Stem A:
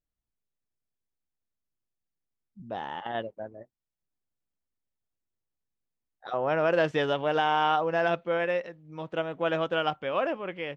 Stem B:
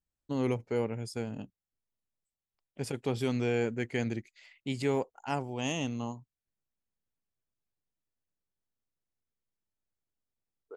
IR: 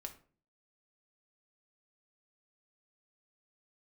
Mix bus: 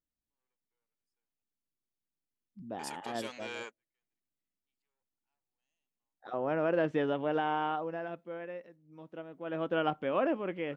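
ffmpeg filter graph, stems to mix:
-filter_complex "[0:a]acrossover=split=3100[link_01][link_02];[link_02]acompressor=threshold=-57dB:ratio=4:attack=1:release=60[link_03];[link_01][link_03]amix=inputs=2:normalize=0,equalizer=frequency=270:width=1.1:gain=9,volume=4.5dB,afade=type=out:start_time=7.51:duration=0.57:silence=0.354813,afade=type=in:start_time=9.44:duration=0.38:silence=0.237137,asplit=3[link_04][link_05][link_06];[link_05]volume=-22.5dB[link_07];[1:a]asoftclip=type=tanh:threshold=-27dB,highpass=980,volume=0.5dB[link_08];[link_06]apad=whole_len=474690[link_09];[link_08][link_09]sidechaingate=range=-50dB:threshold=-56dB:ratio=16:detection=peak[link_10];[2:a]atrim=start_sample=2205[link_11];[link_07][link_11]afir=irnorm=-1:irlink=0[link_12];[link_04][link_10][link_12]amix=inputs=3:normalize=0"

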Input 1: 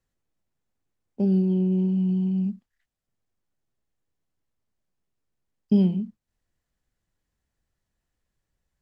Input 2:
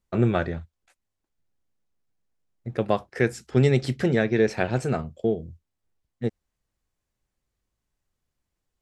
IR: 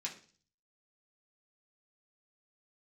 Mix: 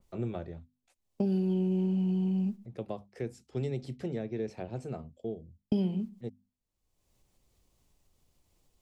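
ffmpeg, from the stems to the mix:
-filter_complex "[0:a]agate=range=-33dB:threshold=-27dB:ratio=3:detection=peak,volume=3dB,asplit=3[link_01][link_02][link_03];[link_02]volume=-18dB[link_04];[1:a]equalizer=frequency=1600:width_type=o:width=0.81:gain=-10,bandreject=frequency=50:width_type=h:width=6,bandreject=frequency=100:width_type=h:width=6,bandreject=frequency=150:width_type=h:width=6,bandreject=frequency=200:width_type=h:width=6,bandreject=frequency=250:width_type=h:width=6,acompressor=mode=upward:threshold=-37dB:ratio=2.5,volume=-3dB[link_05];[link_03]apad=whole_len=388928[link_06];[link_05][link_06]sidechaingate=range=-9dB:threshold=-30dB:ratio=16:detection=peak[link_07];[2:a]atrim=start_sample=2205[link_08];[link_04][link_08]afir=irnorm=-1:irlink=0[link_09];[link_01][link_07][link_09]amix=inputs=3:normalize=0,acrossover=split=340|890[link_10][link_11][link_12];[link_10]acompressor=threshold=-31dB:ratio=4[link_13];[link_11]acompressor=threshold=-36dB:ratio=4[link_14];[link_12]acompressor=threshold=-50dB:ratio=4[link_15];[link_13][link_14][link_15]amix=inputs=3:normalize=0,adynamicequalizer=threshold=0.00126:dfrequency=2800:dqfactor=0.7:tfrequency=2800:tqfactor=0.7:attack=5:release=100:ratio=0.375:range=2:mode=cutabove:tftype=highshelf"

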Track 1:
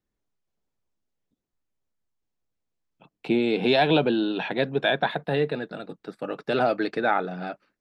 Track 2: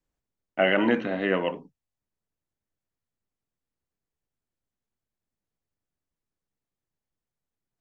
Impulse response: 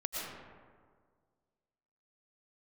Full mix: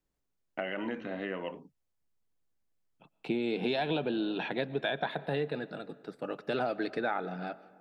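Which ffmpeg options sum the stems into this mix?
-filter_complex "[0:a]volume=-6dB,asplit=2[link_01][link_02];[link_02]volume=-21dB[link_03];[1:a]acompressor=threshold=-32dB:ratio=4,volume=-2dB[link_04];[2:a]atrim=start_sample=2205[link_05];[link_03][link_05]afir=irnorm=-1:irlink=0[link_06];[link_01][link_04][link_06]amix=inputs=3:normalize=0,acompressor=threshold=-27dB:ratio=6"

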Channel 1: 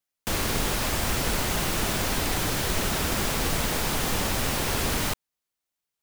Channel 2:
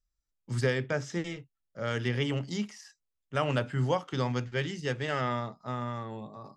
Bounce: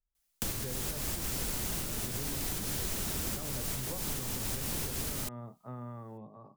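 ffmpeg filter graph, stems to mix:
ffmpeg -i stem1.wav -i stem2.wav -filter_complex "[0:a]highshelf=frequency=3900:gain=9,adelay=150,volume=0.5dB[link_01];[1:a]lowpass=1300,volume=-6dB,asplit=2[link_02][link_03];[link_03]apad=whole_len=272323[link_04];[link_01][link_04]sidechaincompress=threshold=-37dB:ratio=8:attack=8.4:release=260[link_05];[link_05][link_02]amix=inputs=2:normalize=0,acrossover=split=410|5600[link_06][link_07][link_08];[link_06]acompressor=threshold=-37dB:ratio=4[link_09];[link_07]acompressor=threshold=-46dB:ratio=4[link_10];[link_08]acompressor=threshold=-38dB:ratio=4[link_11];[link_09][link_10][link_11]amix=inputs=3:normalize=0" out.wav

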